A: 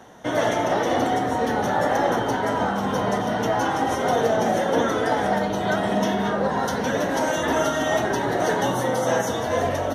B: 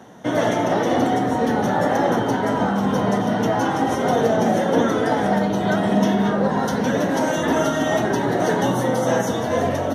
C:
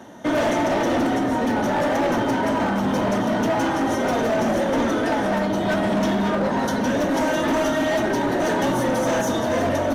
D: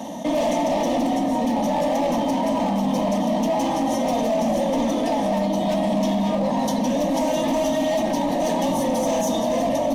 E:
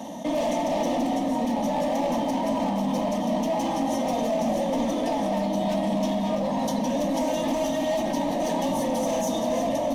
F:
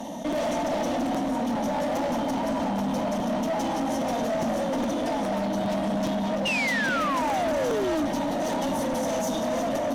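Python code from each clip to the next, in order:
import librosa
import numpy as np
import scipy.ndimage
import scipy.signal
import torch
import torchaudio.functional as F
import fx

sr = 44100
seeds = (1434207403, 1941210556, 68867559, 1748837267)

y1 = scipy.signal.sosfilt(scipy.signal.butter(2, 77.0, 'highpass', fs=sr, output='sos'), x)
y1 = fx.peak_eq(y1, sr, hz=190.0, db=7.0, octaves=2.0)
y2 = y1 + 0.42 * np.pad(y1, (int(3.3 * sr / 1000.0), 0))[:len(y1)]
y2 = fx.rider(y2, sr, range_db=10, speed_s=2.0)
y2 = np.clip(10.0 ** (17.5 / 20.0) * y2, -1.0, 1.0) / 10.0 ** (17.5 / 20.0)
y3 = fx.fixed_phaser(y2, sr, hz=390.0, stages=6)
y3 = fx.env_flatten(y3, sr, amount_pct=50)
y4 = y3 + 10.0 ** (-11.0 / 20.0) * np.pad(y3, (int(333 * sr / 1000.0), 0))[:len(y3)]
y4 = F.gain(torch.from_numpy(y4), -4.0).numpy()
y5 = fx.spec_paint(y4, sr, seeds[0], shape='fall', start_s=6.45, length_s=1.63, low_hz=270.0, high_hz=2900.0, level_db=-24.0)
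y5 = fx.tube_stage(y5, sr, drive_db=24.0, bias=0.3)
y5 = fx.buffer_crackle(y5, sr, first_s=0.32, period_s=0.41, block=256, kind='repeat')
y5 = F.gain(torch.from_numpy(y5), 2.0).numpy()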